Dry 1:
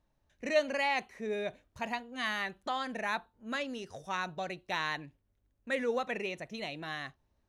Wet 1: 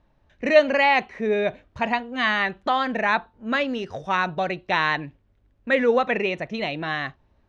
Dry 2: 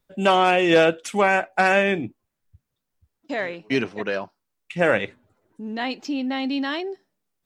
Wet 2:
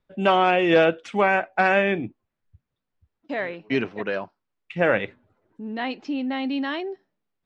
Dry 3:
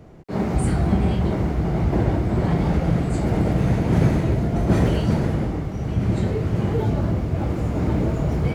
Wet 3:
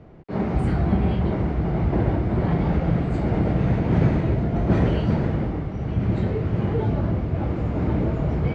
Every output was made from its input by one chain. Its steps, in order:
LPF 3300 Hz 12 dB/oct; match loudness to -23 LUFS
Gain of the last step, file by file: +12.5, -1.0, -1.0 dB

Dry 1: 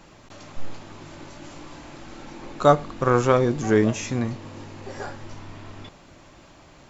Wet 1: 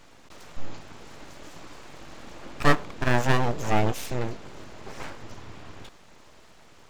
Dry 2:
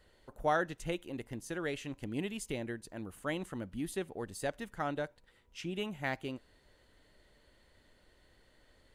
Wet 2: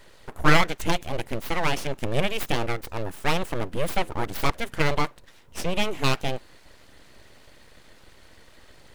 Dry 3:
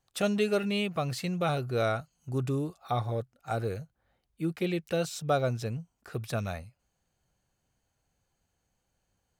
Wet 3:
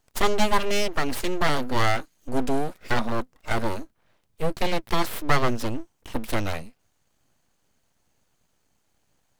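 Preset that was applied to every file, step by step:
full-wave rectifier; match loudness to -27 LUFS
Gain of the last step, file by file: -1.0, +15.5, +9.0 dB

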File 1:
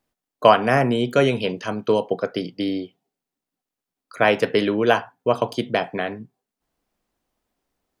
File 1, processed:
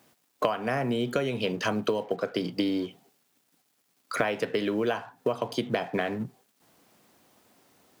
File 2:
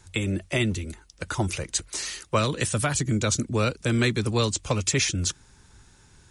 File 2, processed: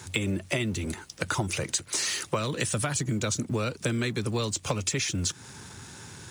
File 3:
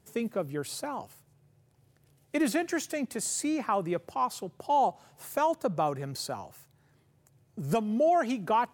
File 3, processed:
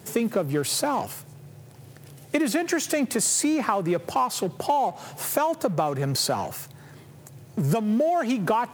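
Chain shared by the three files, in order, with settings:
G.711 law mismatch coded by mu; HPF 94 Hz 24 dB/oct; compressor 20:1, threshold -30 dBFS; normalise peaks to -9 dBFS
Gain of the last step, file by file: +6.5, +5.5, +10.5 dB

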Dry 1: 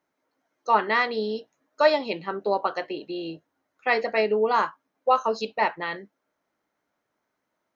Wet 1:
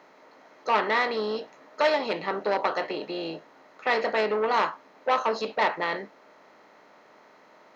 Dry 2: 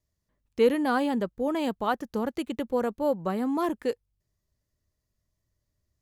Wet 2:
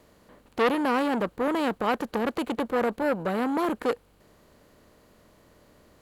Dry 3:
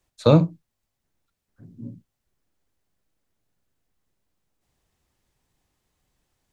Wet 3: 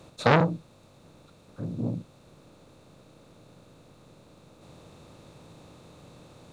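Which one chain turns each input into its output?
per-bin compression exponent 0.6; core saturation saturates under 1500 Hz; match loudness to -27 LUFS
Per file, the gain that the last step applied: -3.5, +1.0, 0.0 dB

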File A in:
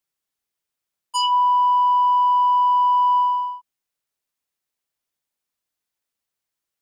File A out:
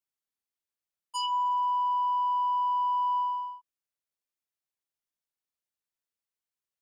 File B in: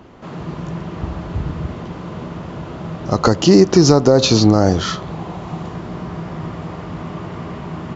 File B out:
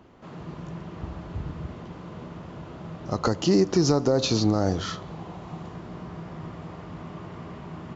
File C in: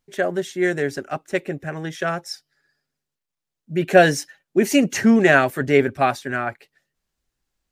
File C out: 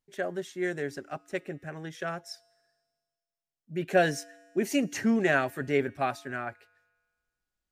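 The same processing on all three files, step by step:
resonator 97 Hz, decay 1.7 s, harmonics odd, mix 40%; gain -6 dB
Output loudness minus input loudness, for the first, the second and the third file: -10.5, -10.0, -10.0 LU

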